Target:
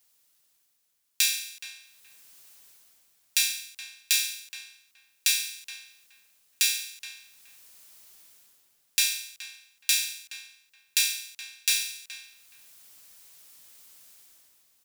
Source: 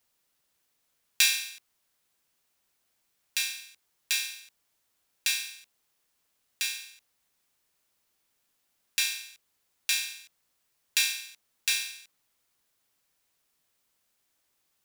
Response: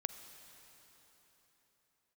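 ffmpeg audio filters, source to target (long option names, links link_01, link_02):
-filter_complex "[0:a]highshelf=frequency=2800:gain=11,dynaudnorm=framelen=110:gausssize=11:maxgain=13dB,asplit=2[link_01][link_02];[link_02]adelay=422,lowpass=frequency=1500:poles=1,volume=-8dB,asplit=2[link_03][link_04];[link_04]adelay=422,lowpass=frequency=1500:poles=1,volume=0.26,asplit=2[link_05][link_06];[link_06]adelay=422,lowpass=frequency=1500:poles=1,volume=0.26[link_07];[link_03][link_05][link_07]amix=inputs=3:normalize=0[link_08];[link_01][link_08]amix=inputs=2:normalize=0,volume=-1dB"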